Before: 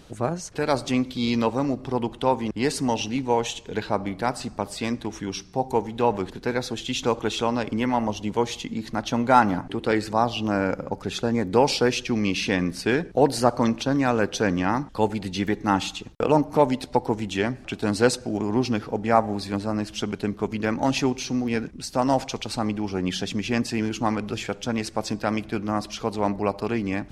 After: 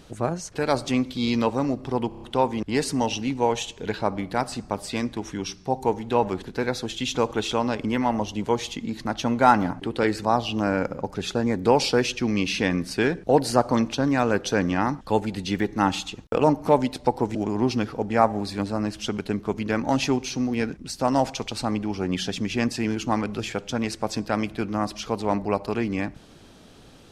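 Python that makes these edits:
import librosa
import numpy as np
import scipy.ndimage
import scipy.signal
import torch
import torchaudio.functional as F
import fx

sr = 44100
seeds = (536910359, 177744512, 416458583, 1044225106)

y = fx.edit(x, sr, fx.stutter(start_s=2.09, slice_s=0.03, count=5),
    fx.cut(start_s=17.23, length_s=1.06), tone=tone)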